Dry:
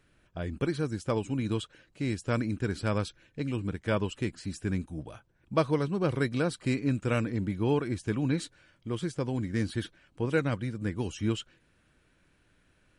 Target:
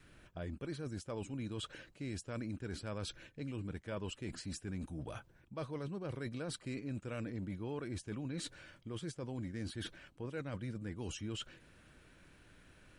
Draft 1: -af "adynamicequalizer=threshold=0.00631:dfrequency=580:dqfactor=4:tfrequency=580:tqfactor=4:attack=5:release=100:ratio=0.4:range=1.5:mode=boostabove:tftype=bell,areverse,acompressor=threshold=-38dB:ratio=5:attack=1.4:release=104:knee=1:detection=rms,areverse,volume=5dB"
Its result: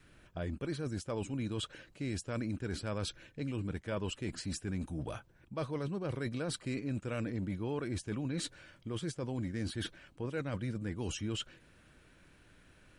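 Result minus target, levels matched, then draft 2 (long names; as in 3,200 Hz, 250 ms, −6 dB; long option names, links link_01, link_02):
downward compressor: peak gain reduction −5 dB
-af "adynamicequalizer=threshold=0.00631:dfrequency=580:dqfactor=4:tfrequency=580:tqfactor=4:attack=5:release=100:ratio=0.4:range=1.5:mode=boostabove:tftype=bell,areverse,acompressor=threshold=-44dB:ratio=5:attack=1.4:release=104:knee=1:detection=rms,areverse,volume=5dB"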